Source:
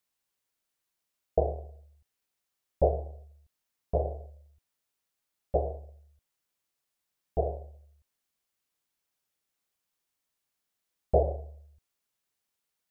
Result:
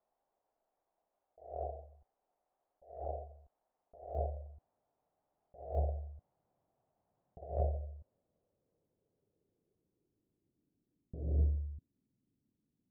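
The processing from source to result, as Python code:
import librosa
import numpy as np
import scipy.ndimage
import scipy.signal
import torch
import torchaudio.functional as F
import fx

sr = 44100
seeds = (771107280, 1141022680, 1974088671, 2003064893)

y = fx.filter_sweep_lowpass(x, sr, from_hz=720.0, to_hz=270.0, start_s=7.33, end_s=11.32, q=3.6)
y = fx.over_compress(y, sr, threshold_db=-40.0, ratio=-1.0)
y = fx.peak_eq(y, sr, hz=120.0, db=fx.steps((0.0, -9.5), (4.15, 3.0), (5.75, 11.0)), octaves=2.1)
y = F.gain(torch.from_numpy(y), -4.5).numpy()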